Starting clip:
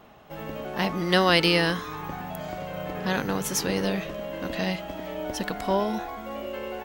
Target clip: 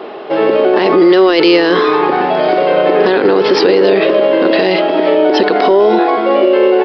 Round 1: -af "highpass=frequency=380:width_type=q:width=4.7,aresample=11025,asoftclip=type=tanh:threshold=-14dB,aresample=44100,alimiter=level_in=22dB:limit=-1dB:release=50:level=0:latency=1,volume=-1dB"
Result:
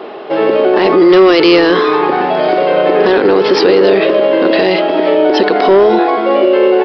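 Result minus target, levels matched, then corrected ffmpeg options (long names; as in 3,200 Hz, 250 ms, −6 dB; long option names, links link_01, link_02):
soft clipping: distortion +10 dB
-af "highpass=frequency=380:width_type=q:width=4.7,aresample=11025,asoftclip=type=tanh:threshold=-6dB,aresample=44100,alimiter=level_in=22dB:limit=-1dB:release=50:level=0:latency=1,volume=-1dB"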